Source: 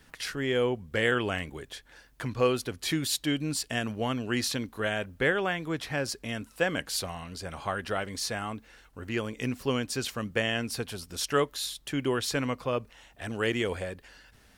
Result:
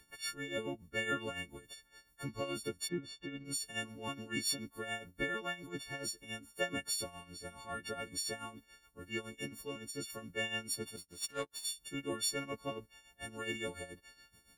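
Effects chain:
every partial snapped to a pitch grid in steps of 4 semitones
0:02.87–0:03.44: low-pass filter 1,400 Hz → 2,700 Hz 12 dB per octave
harmonic and percussive parts rebalanced harmonic −9 dB
0:09.35–0:10.10: downward compressor, threshold −33 dBFS, peak gain reduction 6.5 dB
amplitude tremolo 7.1 Hz, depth 71%
0:10.96–0:11.65: power curve on the samples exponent 1.4
level −2.5 dB

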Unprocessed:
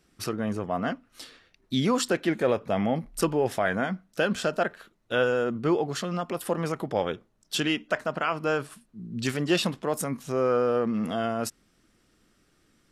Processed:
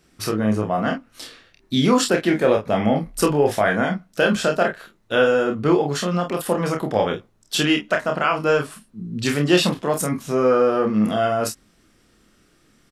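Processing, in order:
ambience of single reflections 28 ms −4.5 dB, 47 ms −9.5 dB
level +5.5 dB

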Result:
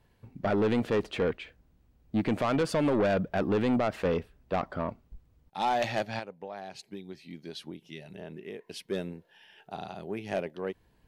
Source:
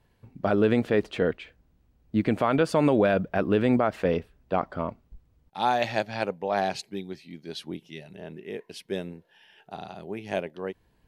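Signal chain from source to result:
0:06.19–0:08.67: downward compressor 10 to 1, threshold −37 dBFS, peak gain reduction 16.5 dB
soft clipping −21 dBFS, distortion −10 dB

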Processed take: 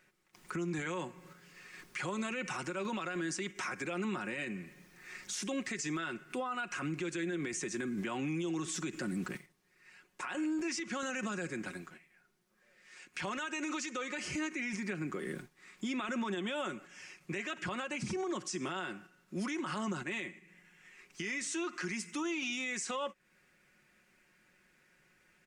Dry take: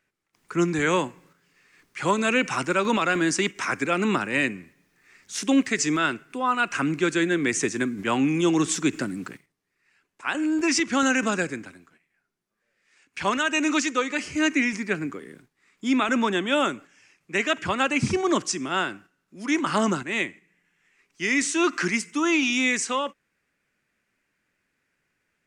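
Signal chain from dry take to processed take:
comb filter 5.5 ms, depth 51%
downward compressor 4 to 1, threshold −38 dBFS, peak gain reduction 19.5 dB
brickwall limiter −34.5 dBFS, peak gain reduction 11.5 dB
level +5.5 dB

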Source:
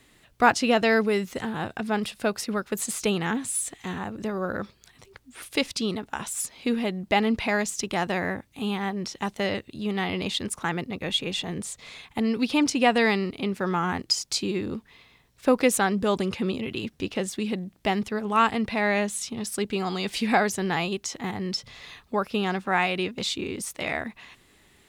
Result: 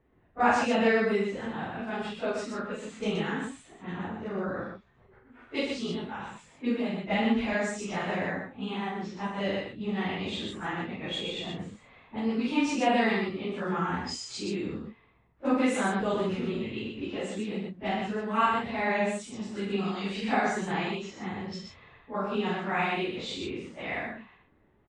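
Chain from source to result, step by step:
random phases in long frames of 100 ms
Butterworth low-pass 8,000 Hz 36 dB per octave
low-pass that shuts in the quiet parts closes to 1,000 Hz, open at −23 dBFS
parametric band 5,300 Hz −8 dB 0.79 octaves
multi-tap delay 46/122 ms −4.5/−4 dB
level −6 dB

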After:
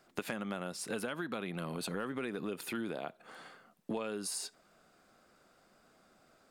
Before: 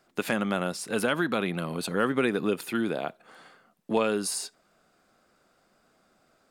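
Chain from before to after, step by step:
0:01.51–0:02.99: transient designer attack −4 dB, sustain +2 dB
downward compressor 6 to 1, threshold −35 dBFS, peak gain reduction 14.5 dB

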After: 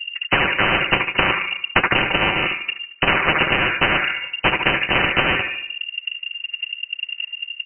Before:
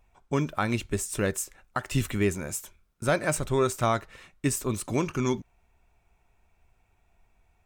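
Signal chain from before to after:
loose part that buzzes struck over −38 dBFS, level −20 dBFS
low-pass that shuts in the quiet parts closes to 1,900 Hz
spectral tilt −4 dB per octave
comb filter 4.9 ms, depth 77%
transient designer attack +11 dB, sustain −5 dB
leveller curve on the samples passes 1
flanger 0.7 Hz, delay 1.3 ms, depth 9.6 ms, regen −68%
on a send: delay with a band-pass on its return 74 ms, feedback 44%, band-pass 930 Hz, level −6 dB
on the sum: voice inversion scrambler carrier 2,800 Hz
every bin compressed towards the loudest bin 10 to 1
level −12 dB

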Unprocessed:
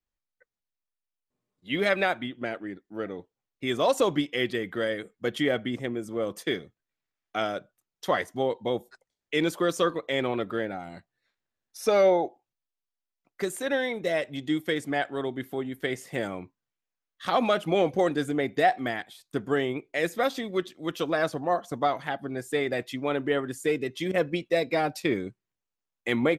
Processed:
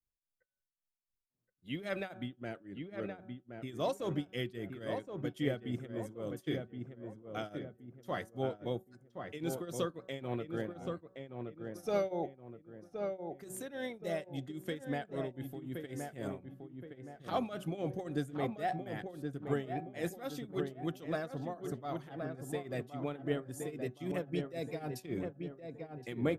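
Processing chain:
hum removal 187.8 Hz, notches 9
on a send: feedback echo with a low-pass in the loop 1,071 ms, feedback 42%, low-pass 1,700 Hz, level −5 dB
on the sum: shaped tremolo triangle 3.7 Hz, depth 90%
octave-band graphic EQ 125/250/500/1,000/2,000/4,000/8,000 Hz +4/−3/−5/−7/−8/−7/−3 dB
level −1.5 dB

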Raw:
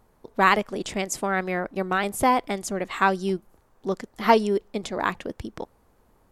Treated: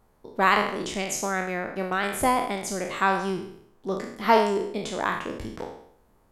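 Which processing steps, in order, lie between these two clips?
peak hold with a decay on every bin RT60 0.68 s
level −3.5 dB

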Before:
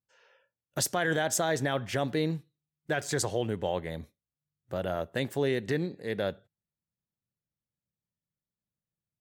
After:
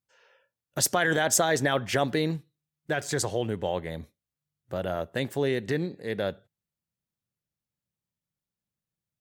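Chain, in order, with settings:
0:00.83–0:02.36: harmonic and percussive parts rebalanced percussive +5 dB
level +1.5 dB

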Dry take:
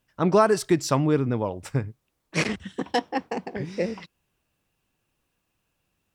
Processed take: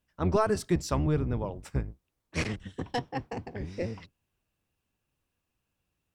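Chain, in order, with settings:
sub-octave generator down 1 octave, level +1 dB
level −7.5 dB

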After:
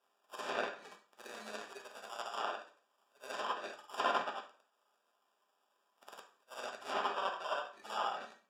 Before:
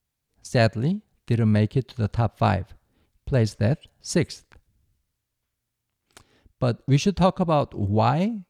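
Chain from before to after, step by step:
every overlapping window played backwards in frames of 215 ms
backwards echo 56 ms −5 dB
reverb reduction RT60 0.73 s
first difference
decimation without filtering 21×
high-pass filter 630 Hz 12 dB per octave
treble cut that deepens with the level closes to 3,000 Hz, closed at −43.5 dBFS
on a send at −2.5 dB: parametric band 1,400 Hz +3.5 dB + convolution reverb RT60 0.40 s, pre-delay 3 ms
on the sum: level +8 dB

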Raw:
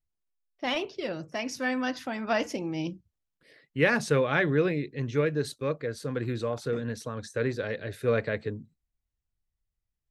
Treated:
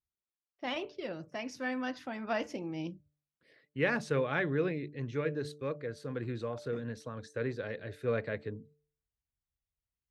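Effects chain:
high-pass filter 42 Hz
high-shelf EQ 6,500 Hz −11 dB
hum removal 147.8 Hz, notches 4
level −6 dB

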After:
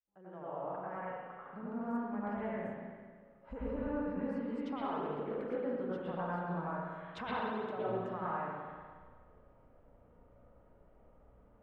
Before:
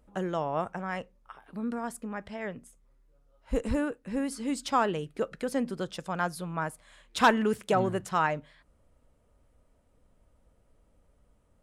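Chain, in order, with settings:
fade in at the beginning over 2.83 s
low-pass filter 1,100 Hz 12 dB per octave
spectral tilt +2 dB per octave
downward compressor 6 to 1, threshold −44 dBFS, peak gain reduction 22.5 dB
convolution reverb RT60 1.7 s, pre-delay 87 ms, DRR −9 dB

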